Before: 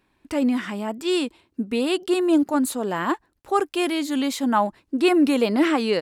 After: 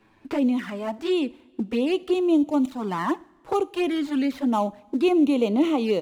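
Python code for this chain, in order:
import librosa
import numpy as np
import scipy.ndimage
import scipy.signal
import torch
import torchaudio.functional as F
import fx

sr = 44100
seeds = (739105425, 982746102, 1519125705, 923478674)

y = fx.dead_time(x, sr, dead_ms=0.066)
y = fx.lowpass(y, sr, hz=2700.0, slope=6)
y = fx.env_flanger(y, sr, rest_ms=9.2, full_db=-18.5)
y = fx.rev_double_slope(y, sr, seeds[0], early_s=0.47, late_s=1.7, knee_db=-17, drr_db=17.5)
y = fx.band_squash(y, sr, depth_pct=40)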